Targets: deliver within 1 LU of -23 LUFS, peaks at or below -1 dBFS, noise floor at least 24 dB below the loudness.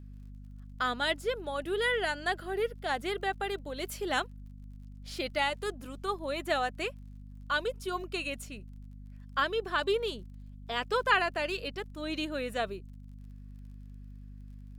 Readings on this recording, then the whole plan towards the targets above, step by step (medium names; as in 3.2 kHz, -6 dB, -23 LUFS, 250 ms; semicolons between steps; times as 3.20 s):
tick rate 31 per s; hum 50 Hz; highest harmonic 250 Hz; hum level -44 dBFS; loudness -32.5 LUFS; peak level -11.0 dBFS; loudness target -23.0 LUFS
-> de-click; hum notches 50/100/150/200/250 Hz; trim +9.5 dB